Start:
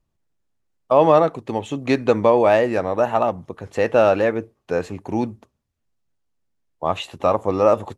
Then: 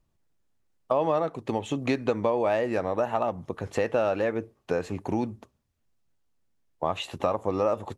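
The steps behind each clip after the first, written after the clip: compressor 3:1, threshold -26 dBFS, peak gain reduction 13 dB; gain +1 dB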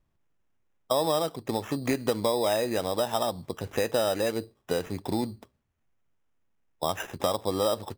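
sample-and-hold 10×; gain -1 dB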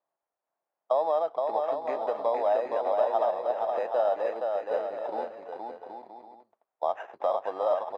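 ladder band-pass 800 Hz, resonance 50%; bouncing-ball echo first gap 0.47 s, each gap 0.65×, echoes 5; gain +8.5 dB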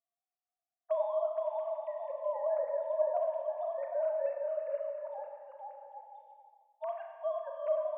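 sine-wave speech; reverb RT60 1.6 s, pre-delay 30 ms, DRR 3 dB; gain -8 dB

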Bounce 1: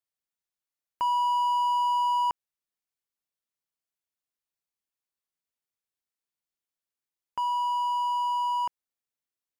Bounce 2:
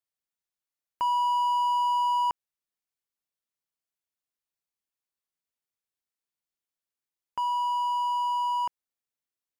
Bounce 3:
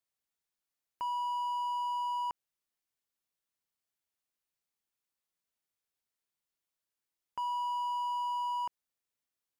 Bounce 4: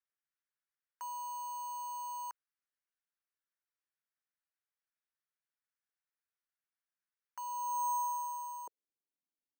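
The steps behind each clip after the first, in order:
nothing audible
limiter -30 dBFS, peak gain reduction 10 dB; gain +1 dB
band-pass sweep 1600 Hz -> 270 Hz, 7.41–9.2; careless resampling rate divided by 6×, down none, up hold; gain +1 dB

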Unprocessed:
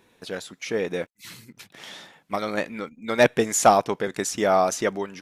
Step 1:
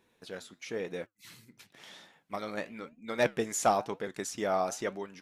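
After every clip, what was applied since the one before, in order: flange 0.98 Hz, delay 3.4 ms, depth 7.9 ms, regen -80%; gain -5.5 dB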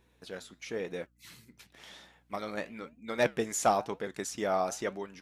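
hum 60 Hz, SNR 35 dB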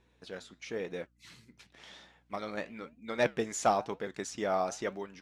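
LPF 7100 Hz 12 dB/oct; short-mantissa float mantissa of 6-bit; gain -1 dB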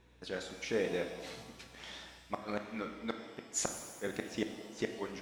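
flipped gate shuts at -24 dBFS, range -36 dB; shimmer reverb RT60 1.4 s, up +7 st, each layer -8 dB, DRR 5.5 dB; gain +3.5 dB

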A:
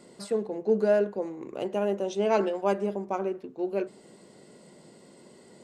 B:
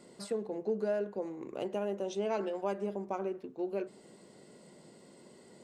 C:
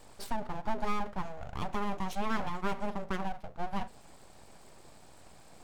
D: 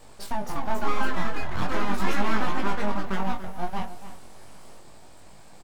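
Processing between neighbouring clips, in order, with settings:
compressor 2.5:1, threshold -28 dBFS, peak gain reduction 7 dB; gain -3.5 dB
full-wave rectifier; gain +3.5 dB
echoes that change speed 0.309 s, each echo +4 st, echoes 3; outdoor echo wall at 49 m, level -13 dB; chorus 0.39 Hz, delay 19 ms, depth 3.6 ms; gain +7.5 dB

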